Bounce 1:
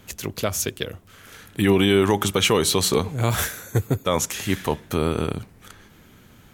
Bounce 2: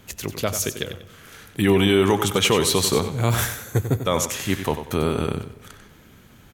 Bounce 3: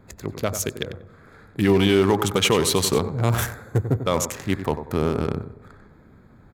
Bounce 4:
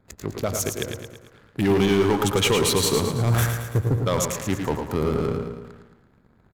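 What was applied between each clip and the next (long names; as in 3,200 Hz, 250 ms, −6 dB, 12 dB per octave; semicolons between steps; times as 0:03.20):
repeating echo 94 ms, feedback 28%, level −10 dB; on a send at −18 dB: convolution reverb RT60 1.8 s, pre-delay 3 ms
adaptive Wiener filter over 15 samples
leveller curve on the samples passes 2; on a send: repeating echo 111 ms, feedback 51%, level −7 dB; on the sum: level −7 dB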